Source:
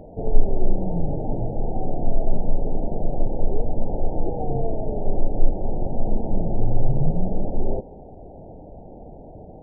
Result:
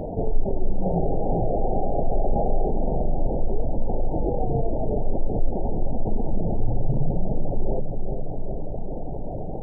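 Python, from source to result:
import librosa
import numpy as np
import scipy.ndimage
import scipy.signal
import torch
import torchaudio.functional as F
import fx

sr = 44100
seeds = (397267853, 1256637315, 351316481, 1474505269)

p1 = fx.dereverb_blind(x, sr, rt60_s=0.76)
p2 = fx.spec_paint(p1, sr, seeds[0], shape='noise', start_s=0.83, length_s=1.83, low_hz=360.0, high_hz=820.0, level_db=-31.0)
p3 = fx.doubler(p2, sr, ms=44.0, db=-4, at=(2.13, 3.27), fade=0.02)
p4 = p3 + fx.echo_bbd(p3, sr, ms=404, stages=2048, feedback_pct=60, wet_db=-9.0, dry=0)
p5 = fx.env_flatten(p4, sr, amount_pct=50)
y = p5 * 10.0 ** (-6.5 / 20.0)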